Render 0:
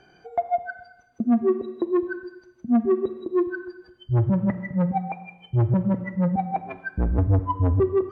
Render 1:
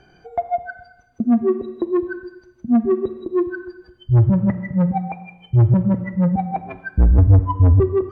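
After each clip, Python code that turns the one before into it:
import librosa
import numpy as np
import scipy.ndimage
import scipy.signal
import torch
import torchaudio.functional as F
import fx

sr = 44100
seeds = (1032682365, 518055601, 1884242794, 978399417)

y = fx.low_shelf(x, sr, hz=120.0, db=12.0)
y = F.gain(torch.from_numpy(y), 1.5).numpy()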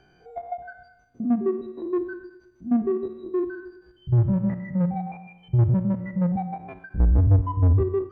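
y = fx.spec_steps(x, sr, hold_ms=50)
y = fx.end_taper(y, sr, db_per_s=230.0)
y = F.gain(torch.from_numpy(y), -5.0).numpy()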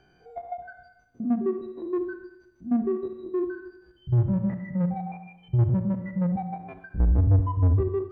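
y = fx.echo_feedback(x, sr, ms=73, feedback_pct=42, wet_db=-14.5)
y = F.gain(torch.from_numpy(y), -2.5).numpy()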